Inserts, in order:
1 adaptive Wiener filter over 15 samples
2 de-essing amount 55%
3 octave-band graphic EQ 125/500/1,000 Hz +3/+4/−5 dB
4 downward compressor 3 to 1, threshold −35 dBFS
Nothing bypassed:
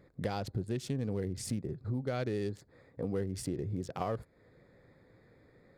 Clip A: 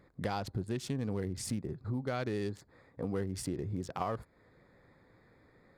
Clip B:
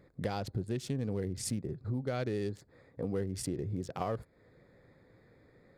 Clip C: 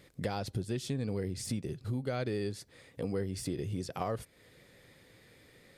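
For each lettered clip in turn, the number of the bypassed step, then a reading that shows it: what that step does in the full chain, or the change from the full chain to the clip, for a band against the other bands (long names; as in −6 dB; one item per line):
3, change in crest factor +1.5 dB
2, 8 kHz band +3.0 dB
1, 4 kHz band +3.0 dB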